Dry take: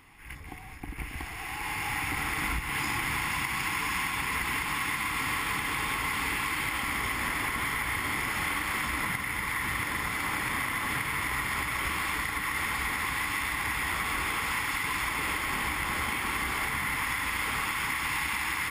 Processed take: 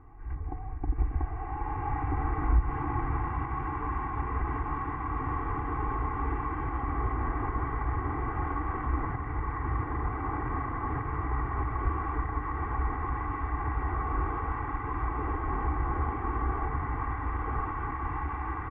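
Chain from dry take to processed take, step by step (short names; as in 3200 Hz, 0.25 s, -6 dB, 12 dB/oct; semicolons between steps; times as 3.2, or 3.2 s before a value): LPF 1200 Hz 24 dB/oct; low shelf 160 Hz +9.5 dB; comb 2.6 ms, depth 72%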